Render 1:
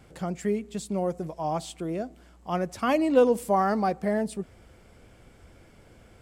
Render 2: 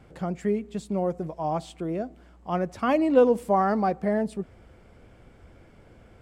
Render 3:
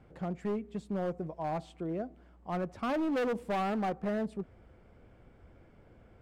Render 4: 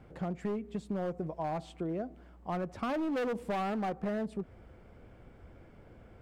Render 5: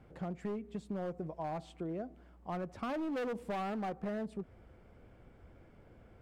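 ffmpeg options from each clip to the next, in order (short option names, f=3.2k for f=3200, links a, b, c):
-af "highshelf=f=3.9k:g=-11.5,volume=1.5dB"
-af "highshelf=f=3.7k:g=-11,volume=23dB,asoftclip=hard,volume=-23dB,volume=-5.5dB"
-af "acompressor=threshold=-35dB:ratio=6,volume=3.5dB"
-af "volume=-4dB" -ar 44100 -c:a libvorbis -b:a 192k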